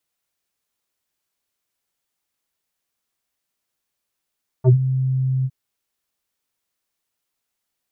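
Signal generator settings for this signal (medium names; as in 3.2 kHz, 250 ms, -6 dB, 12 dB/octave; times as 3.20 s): synth note square C3 24 dB/octave, low-pass 150 Hz, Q 1.2, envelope 3 oct, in 0.09 s, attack 47 ms, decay 0.09 s, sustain -12 dB, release 0.05 s, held 0.81 s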